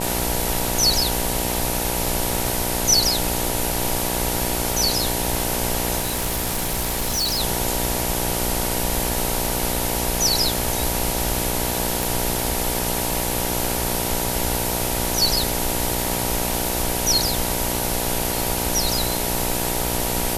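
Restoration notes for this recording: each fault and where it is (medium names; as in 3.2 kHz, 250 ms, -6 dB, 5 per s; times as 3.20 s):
buzz 60 Hz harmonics 16 -27 dBFS
crackle 16 per s -27 dBFS
5.99–7.41 s: clipped -19 dBFS
12.03 s: pop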